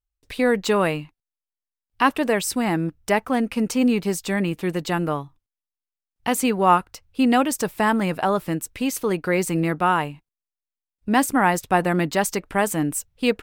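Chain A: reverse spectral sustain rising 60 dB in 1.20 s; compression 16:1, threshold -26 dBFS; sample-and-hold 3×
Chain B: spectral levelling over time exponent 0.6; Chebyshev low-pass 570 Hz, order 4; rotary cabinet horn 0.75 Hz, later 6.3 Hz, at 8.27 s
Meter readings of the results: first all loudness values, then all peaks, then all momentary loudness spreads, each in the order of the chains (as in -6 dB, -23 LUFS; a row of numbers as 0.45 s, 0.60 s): -30.5 LUFS, -23.5 LUFS; -12.5 dBFS, -8.0 dBFS; 7 LU, 8 LU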